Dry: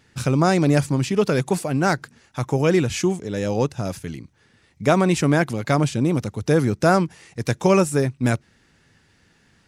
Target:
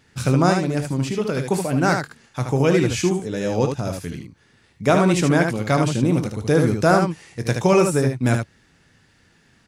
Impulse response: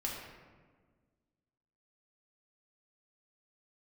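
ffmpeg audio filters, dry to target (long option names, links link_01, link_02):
-filter_complex "[0:a]asettb=1/sr,asplit=3[link_01][link_02][link_03];[link_01]atrim=end=0.524[link_04];[link_02]atrim=start=0.52:end=1.51,asetpts=PTS-STARTPTS,afade=type=in:duration=0.004:curve=qsin,afade=type=out:start_time=0.986:duration=0.004:curve=qsin,acompressor=threshold=-22dB:ratio=3[link_05];[link_03]atrim=start=1.506[link_06];[link_04][link_05]acrossfade=duration=0.004:curve1=hsin:curve2=qsin[link_07];[link_07][link_06]acrossfade=duration=0.004:curve1=qsin:curve2=hsin,aecho=1:1:23|57|75:0.251|0.168|0.531"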